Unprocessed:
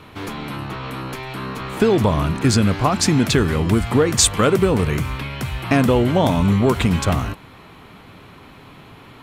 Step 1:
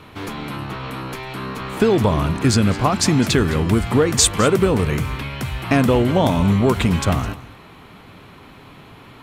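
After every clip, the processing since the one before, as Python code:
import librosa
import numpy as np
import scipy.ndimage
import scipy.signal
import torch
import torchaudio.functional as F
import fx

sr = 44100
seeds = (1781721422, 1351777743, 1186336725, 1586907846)

y = x + 10.0 ** (-17.5 / 20.0) * np.pad(x, (int(210 * sr / 1000.0), 0))[:len(x)]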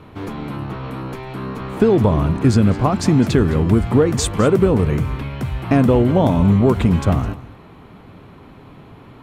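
y = fx.tilt_shelf(x, sr, db=6.0, hz=1300.0)
y = F.gain(torch.from_numpy(y), -3.0).numpy()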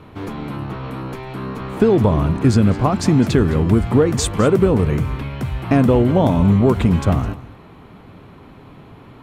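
y = x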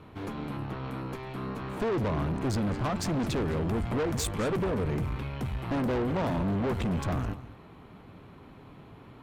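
y = fx.tube_stage(x, sr, drive_db=21.0, bias=0.6)
y = F.gain(torch.from_numpy(y), -5.0).numpy()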